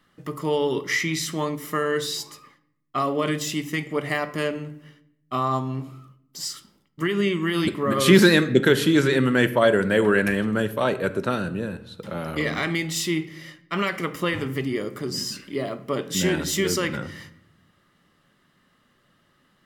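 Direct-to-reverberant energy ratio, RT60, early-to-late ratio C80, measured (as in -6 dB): 11.0 dB, 0.75 s, 18.0 dB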